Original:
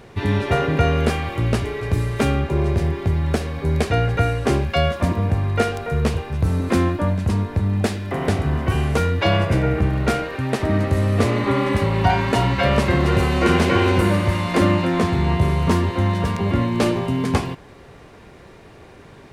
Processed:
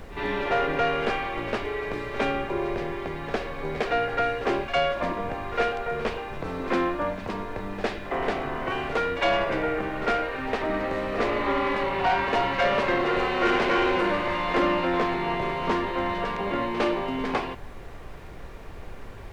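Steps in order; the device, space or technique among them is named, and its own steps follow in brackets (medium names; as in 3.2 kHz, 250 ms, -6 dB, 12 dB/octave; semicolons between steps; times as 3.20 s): aircraft cabin announcement (band-pass 410–3100 Hz; saturation -16 dBFS, distortion -16 dB; brown noise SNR 12 dB); pre-echo 57 ms -13 dB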